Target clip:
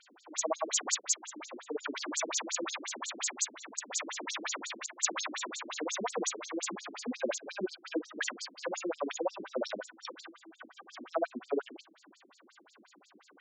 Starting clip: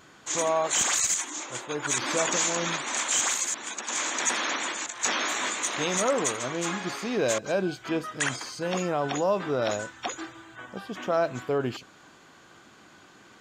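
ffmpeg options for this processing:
ffmpeg -i in.wav -filter_complex "[0:a]asettb=1/sr,asplit=3[link_01][link_02][link_03];[link_01]atrim=end=8.294[link_04];[link_02]atrim=start=8.29:end=8.76,asetpts=PTS-STARTPTS,afade=type=in:duration=0.004:curve=qsin,afade=type=out:start_time=0.466:duration=0.004:curve=qsin,aeval=exprs='0.141*(cos(1*acos(clip(val(0)/0.141,-1,1)))-cos(1*PI/2))+0.0251*(cos(4*acos(clip(val(0)/0.141,-1,1)))-cos(4*PI/2))+0.0158*(cos(8*acos(clip(val(0)/0.141,-1,1)))-cos(8*PI/2))':channel_layout=same[link_05];[link_03]atrim=start=8.756[link_06];[link_04][link_05]acrossfade=duration=0.004:curve1=hsin:curve2=qsin[link_07];[link_07][link_06]acrossfade=duration=0.004:curve1=qsin:curve2=hsin,afftfilt=real='re*between(b*sr/1024,260*pow(6100/260,0.5+0.5*sin(2*PI*5.6*pts/sr))/1.41,260*pow(6100/260,0.5+0.5*sin(2*PI*5.6*pts/sr))*1.41)':imag='im*between(b*sr/1024,260*pow(6100/260,0.5+0.5*sin(2*PI*5.6*pts/sr))/1.41,260*pow(6100/260,0.5+0.5*sin(2*PI*5.6*pts/sr))*1.41)':win_size=1024:overlap=0.75" out.wav

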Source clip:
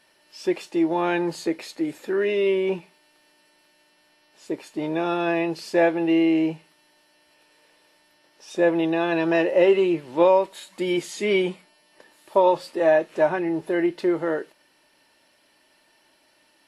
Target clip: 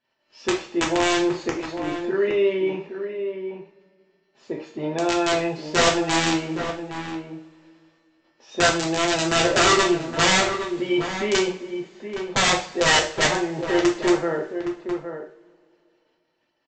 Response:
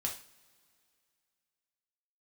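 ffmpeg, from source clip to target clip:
-filter_complex "[0:a]agate=range=-17dB:threshold=-59dB:ratio=16:detection=peak,lowpass=frequency=2600:poles=1,aresample=16000,aeval=exprs='(mod(5.01*val(0)+1,2)-1)/5.01':channel_layout=same,aresample=44100,asplit=2[link_01][link_02];[link_02]adelay=816.3,volume=-8dB,highshelf=frequency=4000:gain=-18.4[link_03];[link_01][link_03]amix=inputs=2:normalize=0[link_04];[1:a]atrim=start_sample=2205[link_05];[link_04][link_05]afir=irnorm=-1:irlink=0"

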